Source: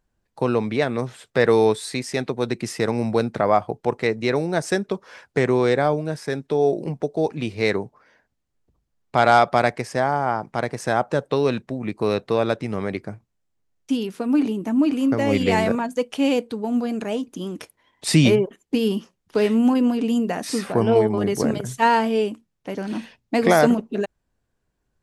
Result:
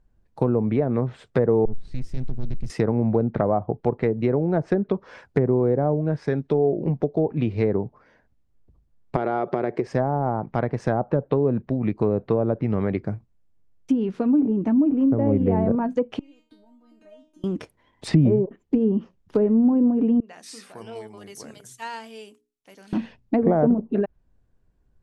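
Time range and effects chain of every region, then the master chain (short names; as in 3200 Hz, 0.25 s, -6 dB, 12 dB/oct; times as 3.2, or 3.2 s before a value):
1.65–2.7 half-wave gain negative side -12 dB + passive tone stack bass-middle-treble 10-0-1 + sample leveller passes 3
9.16–9.87 bell 380 Hz +14 dB 0.67 oct + compressor 4:1, threshold -22 dBFS + HPF 130 Hz
16.19–17.44 compressor 10:1, threshold -31 dBFS + resonator 310 Hz, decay 0.37 s, mix 100%
20.2–22.93 pre-emphasis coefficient 0.97 + notches 60/120/180/240/300/360/420/480 Hz
whole clip: treble ducked by the level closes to 790 Hz, closed at -16.5 dBFS; tilt -2.5 dB/oct; compressor 2:1, threshold -19 dBFS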